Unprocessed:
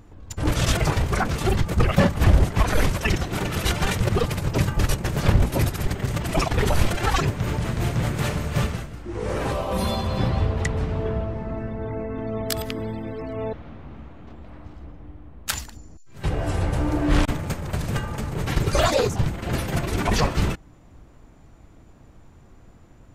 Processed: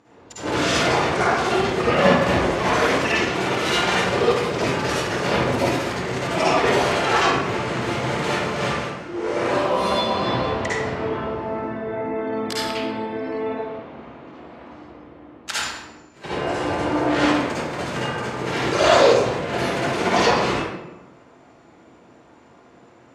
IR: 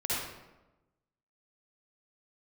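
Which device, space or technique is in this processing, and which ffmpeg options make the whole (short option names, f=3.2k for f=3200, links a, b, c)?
supermarket ceiling speaker: -filter_complex "[0:a]highpass=300,lowpass=6.3k[a];[1:a]atrim=start_sample=2205[b];[a][b]afir=irnorm=-1:irlink=0"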